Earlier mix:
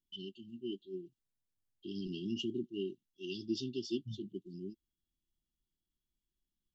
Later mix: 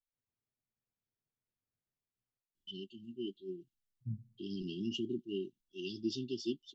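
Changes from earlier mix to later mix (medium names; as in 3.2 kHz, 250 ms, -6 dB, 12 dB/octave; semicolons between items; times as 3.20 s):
first voice: entry +2.55 s; second voice +4.5 dB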